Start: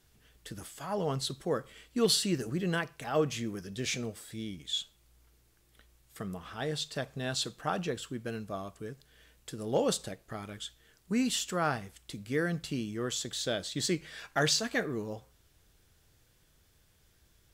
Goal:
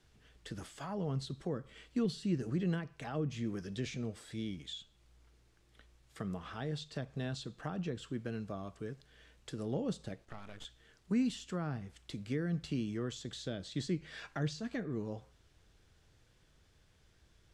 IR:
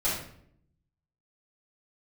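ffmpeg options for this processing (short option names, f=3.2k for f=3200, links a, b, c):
-filter_complex "[0:a]acrossover=split=300[a][b];[b]acompressor=threshold=-41dB:ratio=10[c];[a][c]amix=inputs=2:normalize=0,asettb=1/sr,asplit=3[d][e][f];[d]atrim=end=10.254[g];[e]atrim=start=10.25:end=10.65,asetpts=PTS-STARTPTS,afade=t=in:d=0.004:c=qsin,afade=t=out:st=0.396:d=0.004:c=qsin,aeval=exprs='max(val(0),0)':c=same[h];[f]atrim=start=10.646[i];[g][h]acrossfade=d=0.004:c1=hsin:c2=qsin[j];[j][i]acrossfade=d=0.004:c1=qsin:c2=hsin,lowpass=8.1k,highshelf=f=5.7k:g=-6"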